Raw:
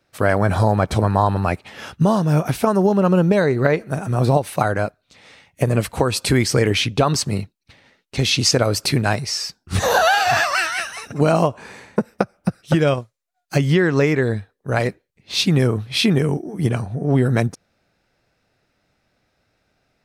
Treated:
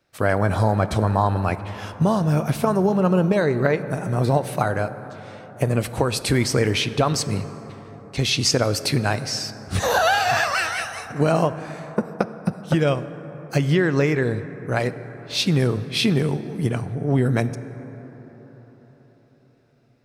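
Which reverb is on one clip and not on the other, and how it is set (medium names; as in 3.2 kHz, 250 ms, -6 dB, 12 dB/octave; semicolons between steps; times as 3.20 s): plate-style reverb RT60 5 s, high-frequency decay 0.3×, DRR 12 dB; trim -3 dB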